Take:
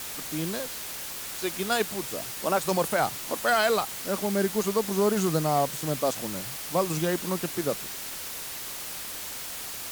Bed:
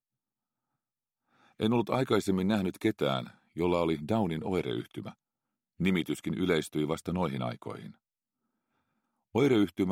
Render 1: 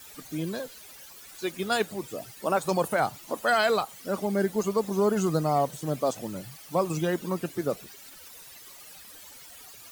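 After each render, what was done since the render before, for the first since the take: denoiser 15 dB, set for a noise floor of -37 dBFS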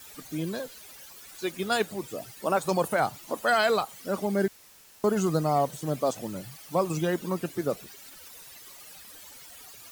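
4.48–5.04 room tone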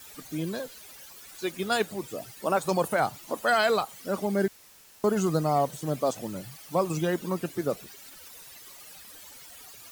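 nothing audible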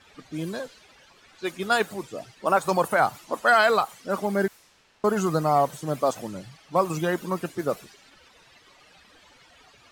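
low-pass opened by the level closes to 2800 Hz, open at -25.5 dBFS; dynamic EQ 1200 Hz, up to +7 dB, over -40 dBFS, Q 0.77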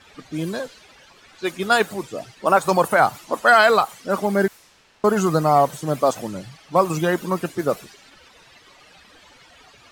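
gain +5 dB

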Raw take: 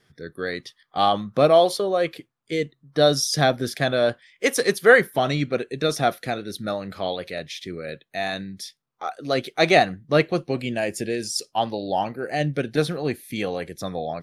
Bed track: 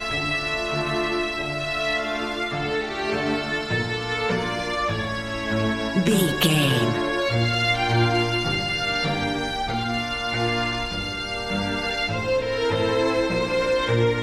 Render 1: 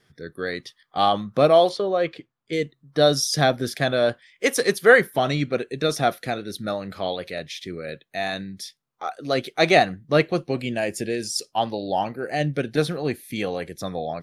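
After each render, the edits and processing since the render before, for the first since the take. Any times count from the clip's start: 1.69–2.53 air absorption 96 m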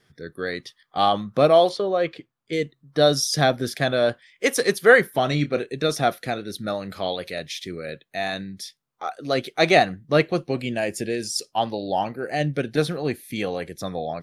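5.29–5.74 doubler 27 ms -11 dB; 6.74–7.88 high shelf 4700 Hz +6 dB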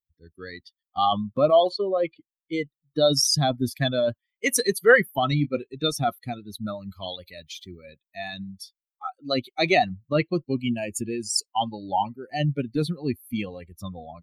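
per-bin expansion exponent 2; in parallel at -2 dB: negative-ratio compressor -28 dBFS, ratio -0.5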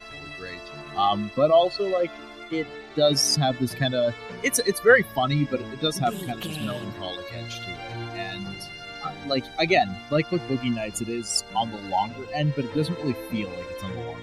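add bed track -14.5 dB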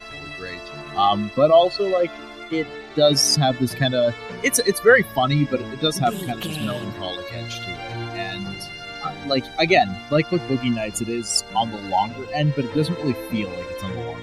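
gain +4 dB; limiter -2 dBFS, peak gain reduction 2.5 dB

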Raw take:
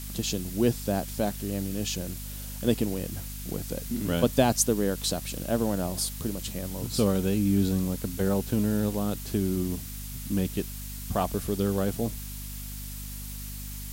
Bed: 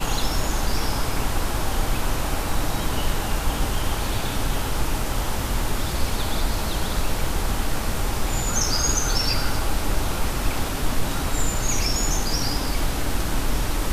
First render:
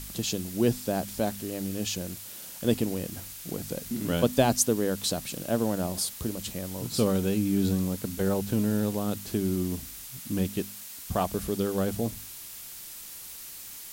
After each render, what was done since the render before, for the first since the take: de-hum 50 Hz, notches 5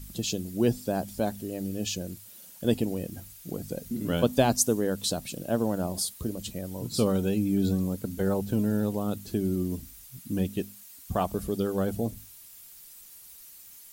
denoiser 11 dB, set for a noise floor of -43 dBFS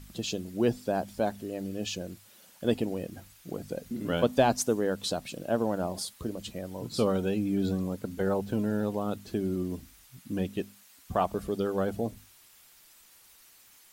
overdrive pedal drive 8 dB, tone 2000 Hz, clips at -8 dBFS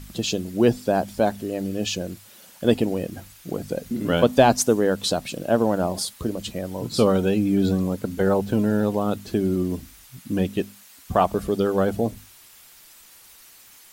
gain +8 dB; limiter -3 dBFS, peak gain reduction 1 dB

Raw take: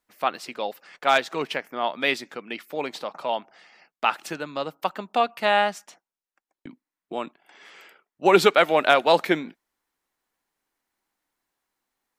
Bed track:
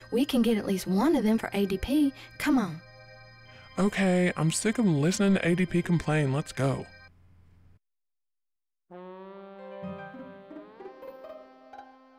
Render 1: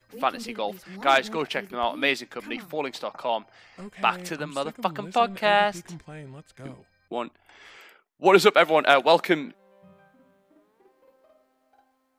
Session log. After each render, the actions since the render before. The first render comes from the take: add bed track -15.5 dB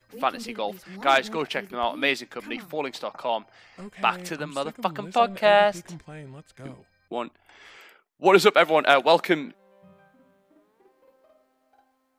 5.19–5.96 bell 580 Hz +8 dB 0.31 oct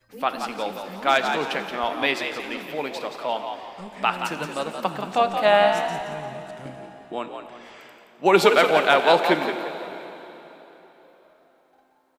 frequency-shifting echo 0.174 s, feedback 34%, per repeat +64 Hz, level -7.5 dB; plate-style reverb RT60 3.7 s, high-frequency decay 0.9×, DRR 9 dB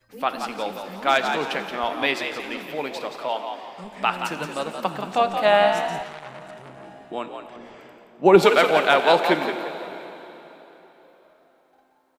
3.28–3.83 HPF 300 Hz -> 93 Hz 24 dB/oct; 6.03–6.86 core saturation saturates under 2200 Hz; 7.56–8.43 tilt shelf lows +6.5 dB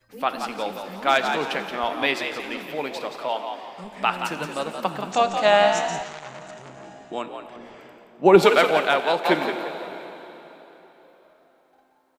5.12–7.22 synth low-pass 6800 Hz, resonance Q 4.2; 8.57–9.25 fade out linear, to -7.5 dB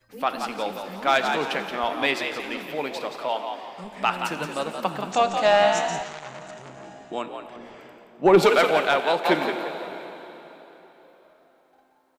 soft clip -7 dBFS, distortion -17 dB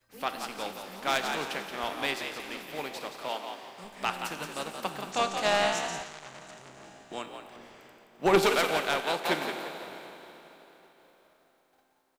spectral contrast lowered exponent 0.69; resonator 390 Hz, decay 0.75 s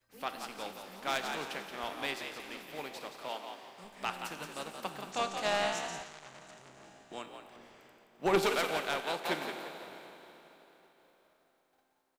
gain -5.5 dB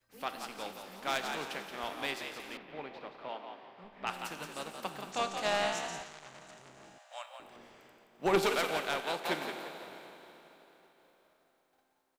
2.57–4.07 air absorption 330 m; 6.98–7.4 brick-wall FIR high-pass 510 Hz

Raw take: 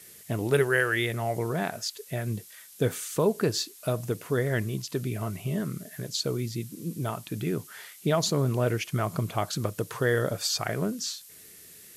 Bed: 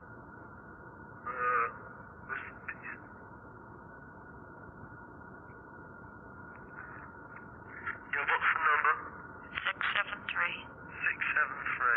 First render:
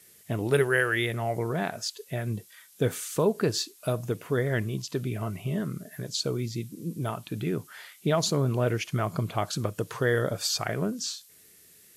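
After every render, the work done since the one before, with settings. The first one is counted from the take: noise print and reduce 6 dB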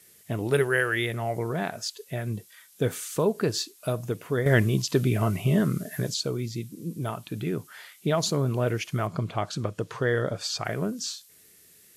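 4.46–6.14 gain +7.5 dB; 9.07–10.65 air absorption 57 m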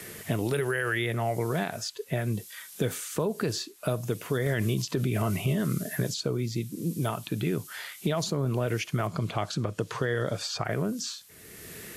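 limiter -19 dBFS, peak gain reduction 11 dB; three-band squash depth 70%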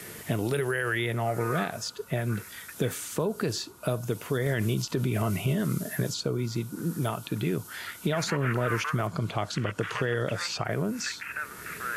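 add bed -5.5 dB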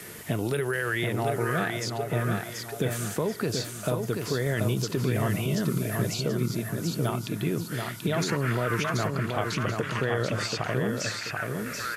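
feedback echo 0.733 s, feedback 35%, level -4.5 dB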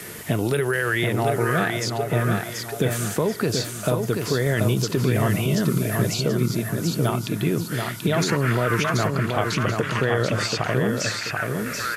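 gain +5.5 dB

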